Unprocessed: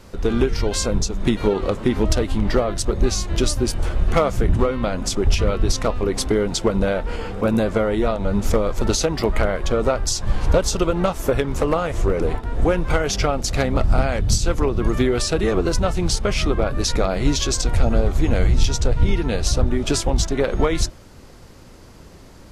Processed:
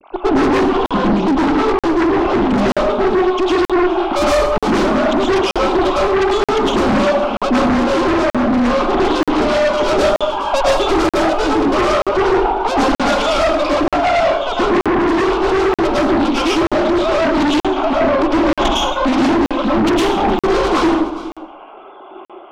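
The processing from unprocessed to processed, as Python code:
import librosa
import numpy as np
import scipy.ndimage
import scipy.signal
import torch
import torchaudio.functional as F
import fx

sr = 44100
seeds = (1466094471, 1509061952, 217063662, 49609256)

p1 = fx.sine_speech(x, sr)
p2 = fx.hum_notches(p1, sr, base_hz=60, count=8)
p3 = fx.tube_stage(p2, sr, drive_db=22.0, bias=0.65)
p4 = fx.fixed_phaser(p3, sr, hz=490.0, stages=6)
p5 = p4 + fx.echo_single(p4, sr, ms=415, db=-19.5, dry=0)
p6 = fx.rev_plate(p5, sr, seeds[0], rt60_s=0.77, hf_ratio=0.65, predelay_ms=95, drr_db=-7.0)
p7 = fx.fold_sine(p6, sr, drive_db=14, ceiling_db=-6.5)
p8 = p6 + (p7 * librosa.db_to_amplitude(-7.0))
p9 = fx.rider(p8, sr, range_db=10, speed_s=0.5)
p10 = fx.buffer_crackle(p9, sr, first_s=0.86, period_s=0.93, block=2048, kind='zero')
y = fx.doppler_dist(p10, sr, depth_ms=0.27)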